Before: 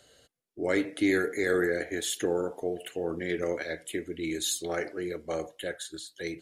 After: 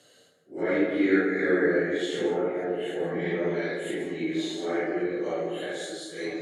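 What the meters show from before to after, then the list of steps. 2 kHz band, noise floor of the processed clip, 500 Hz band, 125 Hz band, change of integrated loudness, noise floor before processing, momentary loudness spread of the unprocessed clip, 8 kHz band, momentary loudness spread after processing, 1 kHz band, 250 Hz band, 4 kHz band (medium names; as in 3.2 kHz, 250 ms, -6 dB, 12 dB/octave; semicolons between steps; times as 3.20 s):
+2.5 dB, -59 dBFS, +3.5 dB, +3.5 dB, +3.0 dB, -67 dBFS, 10 LU, -10.0 dB, 10 LU, +4.0 dB, +4.5 dB, -1.5 dB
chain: phase randomisation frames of 200 ms; high-pass 130 Hz 24 dB/octave; low-pass that closes with the level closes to 2.7 kHz, closed at -27.5 dBFS; repeats whose band climbs or falls 490 ms, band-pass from 310 Hz, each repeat 1.4 oct, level -8 dB; plate-style reverb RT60 0.95 s, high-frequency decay 0.3×, pre-delay 115 ms, DRR 5.5 dB; trim +2 dB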